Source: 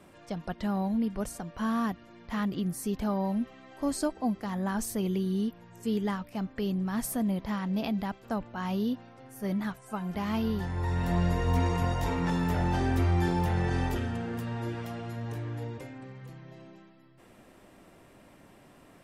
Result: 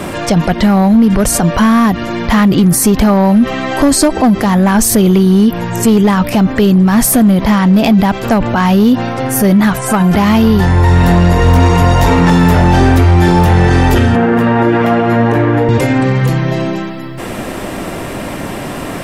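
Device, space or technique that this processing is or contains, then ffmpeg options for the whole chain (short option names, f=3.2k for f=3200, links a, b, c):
loud club master: -filter_complex "[0:a]asettb=1/sr,asplit=3[a][b][c];[a]atrim=end=14.154[d];[b]atrim=start=14.15:end=15.69,asetpts=PTS-STARTPTS,afade=t=in:d=0.004:c=qsin,afade=t=out:st=1.536:d=0.004:c=qsin,acrossover=split=180 2500:gain=0.2 1 0.141[e][f][g];[e][f][g]amix=inputs=3:normalize=0[h];[c]atrim=start=15.686[i];[d][h]acrossfade=d=0.004:c1=hsin:c2=qsin[j];[j][i]acrossfade=d=0.004:c1=qsin:c2=hsin,acompressor=threshold=-30dB:ratio=2.5,asoftclip=type=hard:threshold=-27.5dB,alimiter=level_in=36dB:limit=-1dB:release=50:level=0:latency=1,volume=-2dB"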